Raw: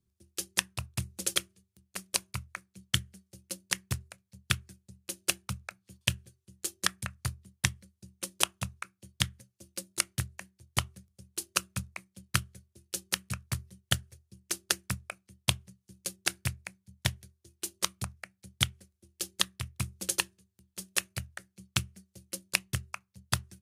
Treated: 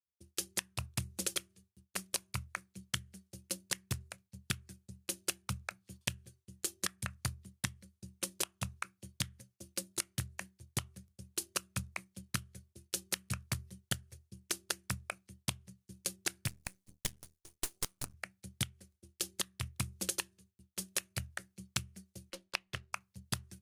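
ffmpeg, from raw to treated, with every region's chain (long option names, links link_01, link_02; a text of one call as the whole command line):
ffmpeg -i in.wav -filter_complex "[0:a]asettb=1/sr,asplit=3[link_01][link_02][link_03];[link_01]atrim=end=16.484[link_04];[link_02]atrim=start=16.48:end=18.14,asetpts=PTS-STARTPTS,afade=type=in:duration=0.004:curve=qsin,afade=type=out:start_time=1.656:duration=0.004:curve=qsin,bass=frequency=250:gain=-5,treble=frequency=4000:gain=8,aeval=exprs='max(val(0),0)':channel_layout=same[link_05];[link_03]atrim=start=18.136[link_06];[link_04][link_05]acrossfade=duration=0.004:curve1=hsin:curve2=qsin[link_07];[link_07][link_06]acrossfade=duration=0.004:curve1=qsin:curve2=hsin,asettb=1/sr,asplit=3[link_08][link_09][link_10];[link_08]atrim=end=22.304[link_11];[link_09]atrim=start=22.3:end=22.93,asetpts=PTS-STARTPTS,afade=type=in:duration=0.004:curve=qsin,afade=type=out:start_time=0.626:duration=0.004:curve=qsin,aeval=exprs='if(lt(val(0),0),0.708*val(0),val(0))':channel_layout=same,acrossover=split=380 4300:gain=0.251 1 0.126[link_12][link_13][link_14];[link_12][link_13][link_14]amix=inputs=3:normalize=0[link_15];[link_10]atrim=start=22.926[link_16];[link_11][link_15]acrossfade=duration=0.004:curve1=hsin:curve2=qsin[link_17];[link_17][link_16]acrossfade=duration=0.004:curve1=qsin:curve2=hsin,agate=range=-33dB:threshold=-59dB:ratio=3:detection=peak,alimiter=limit=-9dB:level=0:latency=1:release=389,acompressor=threshold=-33dB:ratio=10,volume=1.5dB" out.wav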